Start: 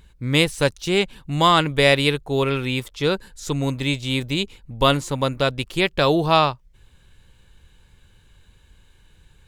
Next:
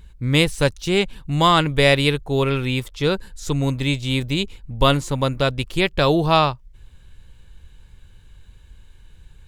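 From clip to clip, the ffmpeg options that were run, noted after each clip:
-af "lowshelf=f=100:g=9.5"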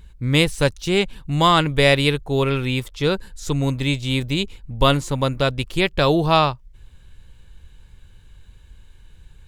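-af anull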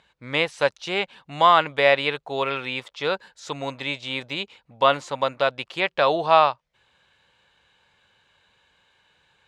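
-filter_complex "[0:a]highpass=230,lowpass=4500,acrossover=split=2900[s0][s1];[s1]acompressor=threshold=0.0316:ratio=4:attack=1:release=60[s2];[s0][s2]amix=inputs=2:normalize=0,lowshelf=f=470:t=q:w=1.5:g=-8.5"

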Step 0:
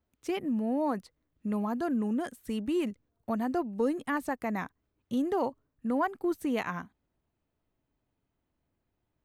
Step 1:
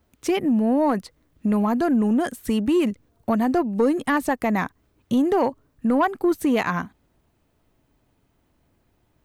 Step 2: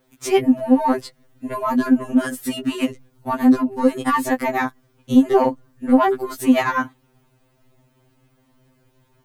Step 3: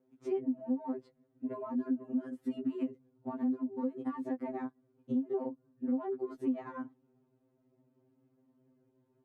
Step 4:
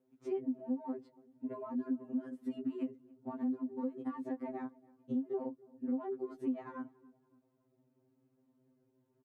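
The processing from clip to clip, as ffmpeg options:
-filter_complex "[0:a]asplit=2[s0][s1];[s1]acompressor=threshold=0.0141:ratio=6,volume=1.33[s2];[s0][s2]amix=inputs=2:normalize=0,asoftclip=type=tanh:threshold=0.126,volume=2.37"
-filter_complex "[0:a]asplit=2[s0][s1];[s1]alimiter=limit=0.1:level=0:latency=1:release=15,volume=1.12[s2];[s0][s2]amix=inputs=2:normalize=0,afftfilt=real='re*2.45*eq(mod(b,6),0)':imag='im*2.45*eq(mod(b,6),0)':win_size=2048:overlap=0.75,volume=1.26"
-af "acompressor=threshold=0.0708:ratio=6,bandpass=f=310:t=q:w=1.4:csg=0,volume=0.531"
-filter_complex "[0:a]asplit=2[s0][s1];[s1]adelay=284,lowpass=f=1600:p=1,volume=0.0668,asplit=2[s2][s3];[s3]adelay=284,lowpass=f=1600:p=1,volume=0.5,asplit=2[s4][s5];[s5]adelay=284,lowpass=f=1600:p=1,volume=0.5[s6];[s0][s2][s4][s6]amix=inputs=4:normalize=0,volume=0.708"

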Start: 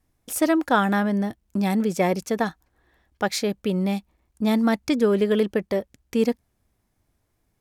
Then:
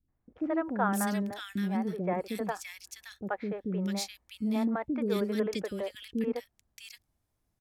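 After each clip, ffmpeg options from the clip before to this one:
-filter_complex "[0:a]acrossover=split=400|2000[s0][s1][s2];[s1]adelay=80[s3];[s2]adelay=650[s4];[s0][s3][s4]amix=inputs=3:normalize=0,volume=0.422"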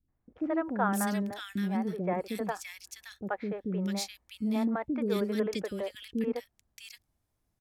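-af anull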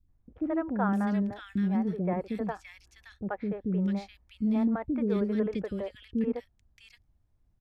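-filter_complex "[0:a]aemphasis=mode=reproduction:type=bsi,acrossover=split=3200[s0][s1];[s1]acompressor=threshold=0.00158:ratio=4:attack=1:release=60[s2];[s0][s2]amix=inputs=2:normalize=0,volume=0.794"

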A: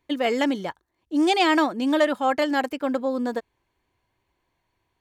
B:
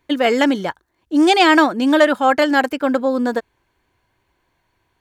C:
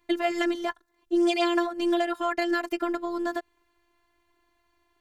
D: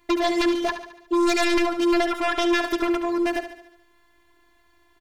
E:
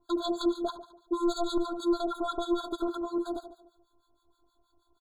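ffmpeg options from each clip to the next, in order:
-af "equalizer=f=1500:t=o:w=0.26:g=6,volume=2.24"
-af "acompressor=threshold=0.112:ratio=6,afftfilt=real='hypot(re,im)*cos(PI*b)':imag='0':win_size=512:overlap=0.75"
-filter_complex "[0:a]aeval=exprs='0.335*sin(PI/2*3.98*val(0)/0.335)':c=same,asplit=2[s0][s1];[s1]aecho=0:1:72|144|216|288|360|432:0.316|0.164|0.0855|0.0445|0.0231|0.012[s2];[s0][s2]amix=inputs=2:normalize=0,volume=0.422"
-filter_complex "[0:a]acrossover=split=990[s0][s1];[s0]aeval=exprs='val(0)*(1-1/2+1/2*cos(2*PI*6.3*n/s))':c=same[s2];[s1]aeval=exprs='val(0)*(1-1/2-1/2*cos(2*PI*6.3*n/s))':c=same[s3];[s2][s3]amix=inputs=2:normalize=0,afftfilt=real='re*eq(mod(floor(b*sr/1024/1600),2),0)':imag='im*eq(mod(floor(b*sr/1024/1600),2),0)':win_size=1024:overlap=0.75,volume=0.668"

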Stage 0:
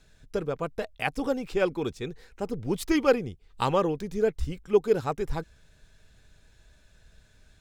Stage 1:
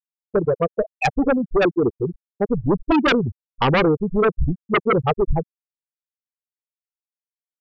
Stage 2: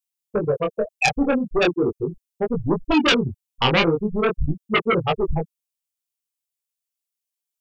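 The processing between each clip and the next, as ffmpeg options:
-af "afftfilt=real='re*gte(hypot(re,im),0.126)':imag='im*gte(hypot(re,im),0.126)':win_size=1024:overlap=0.75,aeval=exprs='0.335*sin(PI/2*4.47*val(0)/0.335)':c=same,volume=0.708"
-filter_complex "[0:a]acrossover=split=500[s0][s1];[s1]aexciter=amount=3.6:drive=1.9:freq=2400[s2];[s0][s2]amix=inputs=2:normalize=0,flanger=delay=17.5:depth=7.1:speed=0.4,volume=1.12"

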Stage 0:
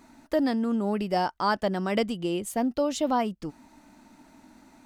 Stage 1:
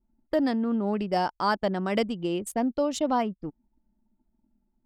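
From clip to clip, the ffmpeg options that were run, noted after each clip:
-af "anlmdn=2.51"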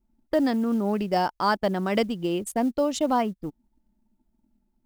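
-af "acrusher=bits=8:mode=log:mix=0:aa=0.000001,volume=1.26"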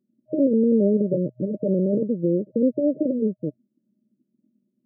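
-af "aeval=exprs='(mod(5.62*val(0)+1,2)-1)/5.62':c=same,aeval=exprs='0.178*(cos(1*acos(clip(val(0)/0.178,-1,1)))-cos(1*PI/2))+0.0708*(cos(4*acos(clip(val(0)/0.178,-1,1)))-cos(4*PI/2))':c=same,afftfilt=real='re*between(b*sr/4096,120,620)':imag='im*between(b*sr/4096,120,620)':win_size=4096:overlap=0.75,volume=1.5"

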